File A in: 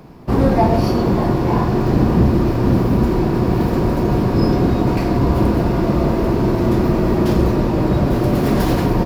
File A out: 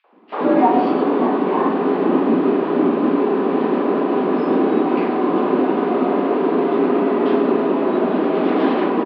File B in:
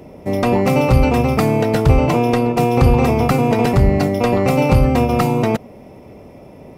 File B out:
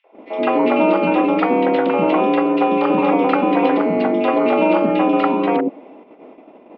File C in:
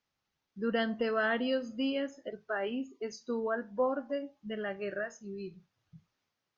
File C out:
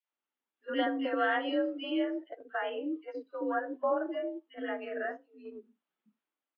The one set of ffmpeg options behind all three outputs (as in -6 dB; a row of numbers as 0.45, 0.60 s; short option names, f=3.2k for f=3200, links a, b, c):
-filter_complex "[0:a]acrossover=split=460|2100[a][b][c];[b]adelay=40[d];[a]adelay=120[e];[e][d][c]amix=inputs=3:normalize=0,highpass=f=200:t=q:w=0.5412,highpass=f=200:t=q:w=1.307,lowpass=f=3.3k:t=q:w=0.5176,lowpass=f=3.3k:t=q:w=0.7071,lowpass=f=3.3k:t=q:w=1.932,afreqshift=50,agate=range=-9dB:threshold=-42dB:ratio=16:detection=peak,volume=2.5dB"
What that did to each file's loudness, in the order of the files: -1.0, -1.0, +0.5 LU